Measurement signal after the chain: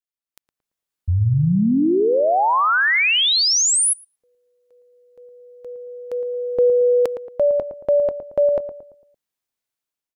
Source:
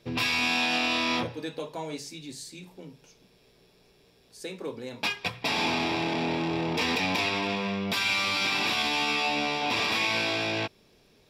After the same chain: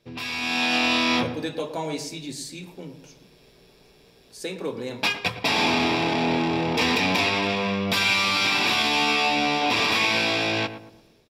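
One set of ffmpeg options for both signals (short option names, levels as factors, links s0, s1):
-filter_complex "[0:a]dynaudnorm=f=220:g=5:m=3.98,asplit=2[s0][s1];[s1]adelay=113,lowpass=f=1200:p=1,volume=0.335,asplit=2[s2][s3];[s3]adelay=113,lowpass=f=1200:p=1,volume=0.43,asplit=2[s4][s5];[s5]adelay=113,lowpass=f=1200:p=1,volume=0.43,asplit=2[s6][s7];[s7]adelay=113,lowpass=f=1200:p=1,volume=0.43,asplit=2[s8][s9];[s9]adelay=113,lowpass=f=1200:p=1,volume=0.43[s10];[s0][s2][s4][s6][s8][s10]amix=inputs=6:normalize=0,volume=0.501"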